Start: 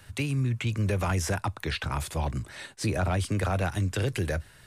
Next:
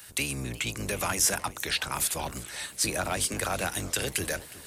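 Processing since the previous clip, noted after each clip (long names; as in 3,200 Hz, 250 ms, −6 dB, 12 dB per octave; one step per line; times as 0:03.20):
sub-octave generator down 1 octave, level 0 dB
RIAA equalisation recording
feedback echo with a swinging delay time 369 ms, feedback 60%, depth 215 cents, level −19 dB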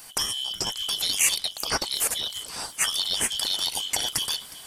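band-splitting scrambler in four parts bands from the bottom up 3412
level +3 dB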